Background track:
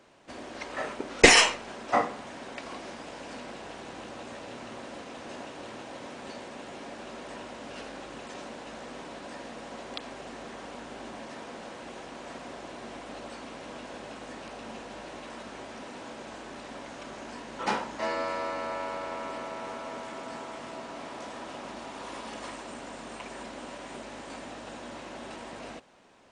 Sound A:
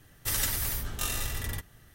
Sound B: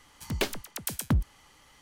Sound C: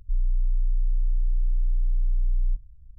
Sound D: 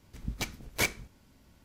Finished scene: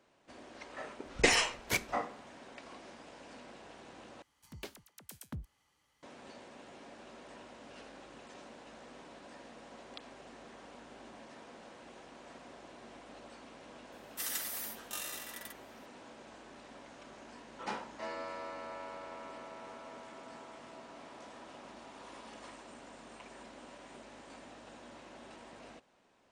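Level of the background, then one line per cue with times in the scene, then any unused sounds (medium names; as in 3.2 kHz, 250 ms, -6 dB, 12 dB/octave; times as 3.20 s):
background track -10.5 dB
0.91 s: add D -9 dB + three bands expanded up and down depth 70%
4.22 s: replace with B -17 dB + high-pass 54 Hz
13.92 s: add A -8 dB + high-pass 720 Hz
not used: C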